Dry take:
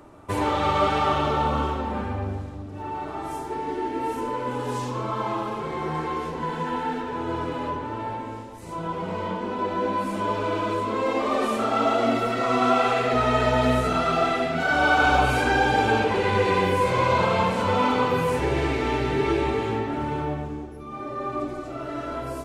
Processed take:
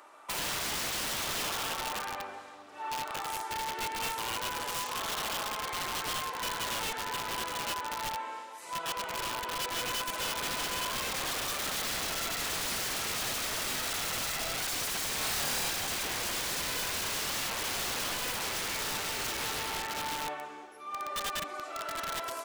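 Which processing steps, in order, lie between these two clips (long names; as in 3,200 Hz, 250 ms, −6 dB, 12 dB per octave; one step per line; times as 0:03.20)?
high-pass filter 1,000 Hz 12 dB per octave
downward compressor 2 to 1, threshold −33 dBFS, peak gain reduction 8.5 dB
wrap-around overflow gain 31 dB
0:15.18–0:15.70: flutter between parallel walls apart 4.7 metres, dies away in 0.35 s
level +2 dB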